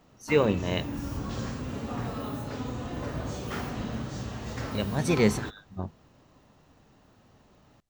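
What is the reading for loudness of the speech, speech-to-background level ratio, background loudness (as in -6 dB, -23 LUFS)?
-27.0 LUFS, 8.0 dB, -35.0 LUFS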